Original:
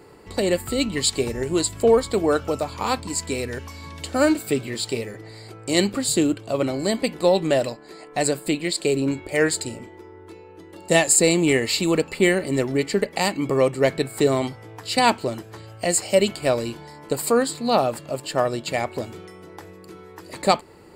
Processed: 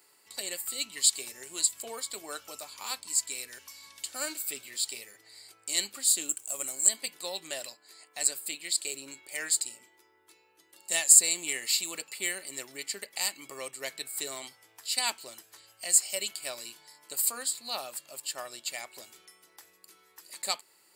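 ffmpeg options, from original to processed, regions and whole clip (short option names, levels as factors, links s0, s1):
-filter_complex "[0:a]asettb=1/sr,asplit=3[s0][s1][s2];[s0]atrim=end=6.294[s3];[s1]atrim=start=6.29:end=6.89,asetpts=PTS-STARTPTS,afade=t=in:d=0.004:c=qsin,afade=t=out:st=0.596:d=0.004:c=qsin,highshelf=f=5900:t=q:w=3:g=10.5,aeval=exprs='sgn(val(0))*max(abs(val(0))-0.00376,0)':c=same[s4];[s2]atrim=start=6.886[s5];[s3][s4]acrossfade=d=0.004:c1=hsin:c2=qsin[s6];[s6][s5]acrossfade=d=0.004:c1=qsin:c2=hsin,aderivative,bandreject=f=470:w=12"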